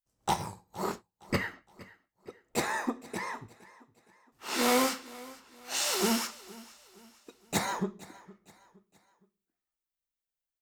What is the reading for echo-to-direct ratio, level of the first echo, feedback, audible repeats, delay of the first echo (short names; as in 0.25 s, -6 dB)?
-19.5 dB, -20.5 dB, 42%, 2, 0.465 s